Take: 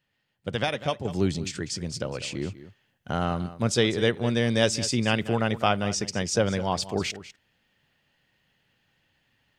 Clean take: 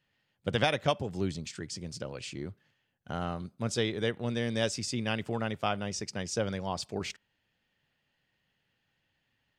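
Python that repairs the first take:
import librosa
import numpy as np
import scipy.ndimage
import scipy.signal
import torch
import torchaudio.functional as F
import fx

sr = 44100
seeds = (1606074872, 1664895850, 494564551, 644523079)

y = fx.fix_echo_inverse(x, sr, delay_ms=197, level_db=-15.0)
y = fx.fix_level(y, sr, at_s=1.05, step_db=-7.5)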